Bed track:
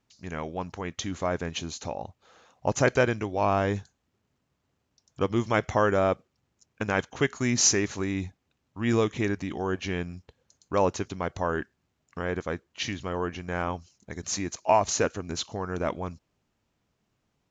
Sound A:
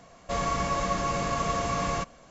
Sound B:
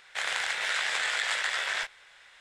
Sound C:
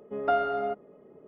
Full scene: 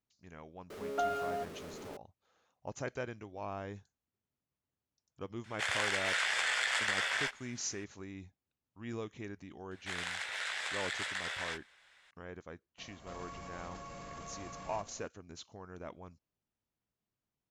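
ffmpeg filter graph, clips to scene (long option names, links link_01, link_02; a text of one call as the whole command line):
ffmpeg -i bed.wav -i cue0.wav -i cue1.wav -i cue2.wav -filter_complex "[2:a]asplit=2[link_01][link_02];[0:a]volume=-17dB[link_03];[3:a]aeval=exprs='val(0)+0.5*0.0211*sgn(val(0))':channel_layout=same[link_04];[link_01]bandreject=frequency=3900:width=13[link_05];[1:a]acompressor=threshold=-43dB:ratio=6:attack=2.7:release=22:knee=1:detection=peak[link_06];[link_04]atrim=end=1.27,asetpts=PTS-STARTPTS,volume=-9dB,afade=type=in:duration=0.004:curve=hsin,afade=type=out:start_time=1.266:duration=0.004:curve=hsin,adelay=700[link_07];[link_05]atrim=end=2.4,asetpts=PTS-STARTPTS,volume=-3dB,afade=type=in:duration=0.004:curve=hsin,afade=type=out:start_time=2.396:duration=0.004:curve=hsin,adelay=5440[link_08];[link_02]atrim=end=2.4,asetpts=PTS-STARTPTS,volume=-9dB,afade=type=in:duration=0.004:curve=hsin,afade=type=out:start_time=2.396:duration=0.004:curve=hsin,adelay=9710[link_09];[link_06]atrim=end=2.3,asetpts=PTS-STARTPTS,volume=-4.5dB,afade=type=in:duration=0.004:curve=hsin,afade=type=out:start_time=2.296:duration=0.004:curve=hsin,adelay=12780[link_10];[link_03][link_07][link_08][link_09][link_10]amix=inputs=5:normalize=0" out.wav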